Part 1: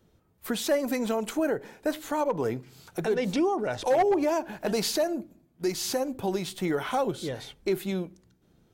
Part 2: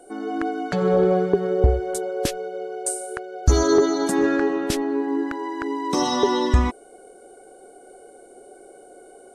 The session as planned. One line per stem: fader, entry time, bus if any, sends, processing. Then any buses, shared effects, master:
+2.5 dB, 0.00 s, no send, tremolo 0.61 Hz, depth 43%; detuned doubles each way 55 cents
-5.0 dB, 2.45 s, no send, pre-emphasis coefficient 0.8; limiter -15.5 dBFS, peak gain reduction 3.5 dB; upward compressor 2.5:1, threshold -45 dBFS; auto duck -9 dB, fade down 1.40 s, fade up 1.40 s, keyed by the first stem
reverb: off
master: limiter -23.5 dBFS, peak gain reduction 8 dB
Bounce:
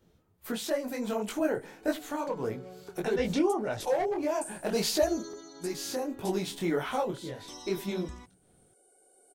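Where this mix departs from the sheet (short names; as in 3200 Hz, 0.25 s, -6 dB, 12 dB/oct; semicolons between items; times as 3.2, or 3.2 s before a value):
stem 2: entry 2.45 s -> 1.55 s; master: missing limiter -23.5 dBFS, peak gain reduction 8 dB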